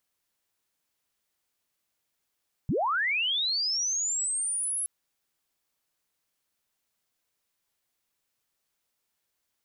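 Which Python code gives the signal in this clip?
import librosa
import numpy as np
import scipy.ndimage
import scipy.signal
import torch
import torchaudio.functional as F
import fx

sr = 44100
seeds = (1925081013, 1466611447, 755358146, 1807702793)

y = fx.chirp(sr, length_s=2.17, from_hz=100.0, to_hz=11000.0, law='linear', from_db=-23.5, to_db=-27.5)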